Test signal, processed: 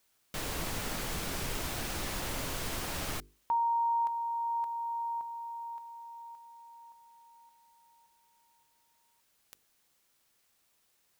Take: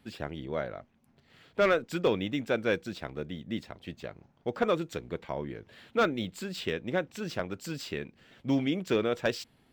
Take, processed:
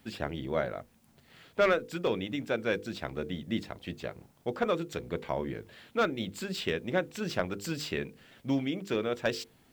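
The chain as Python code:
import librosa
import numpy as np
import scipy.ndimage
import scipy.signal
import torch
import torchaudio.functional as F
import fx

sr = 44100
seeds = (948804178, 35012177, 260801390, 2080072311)

y = fx.rider(x, sr, range_db=3, speed_s=0.5)
y = fx.hum_notches(y, sr, base_hz=50, count=10)
y = fx.quant_dither(y, sr, seeds[0], bits=12, dither='triangular')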